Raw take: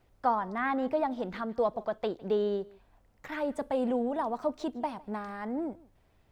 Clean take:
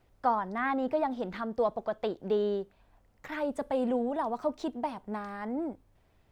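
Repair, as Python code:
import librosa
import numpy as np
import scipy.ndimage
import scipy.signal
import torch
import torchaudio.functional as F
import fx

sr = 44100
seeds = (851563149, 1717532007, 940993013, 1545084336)

y = fx.fix_echo_inverse(x, sr, delay_ms=156, level_db=-23.0)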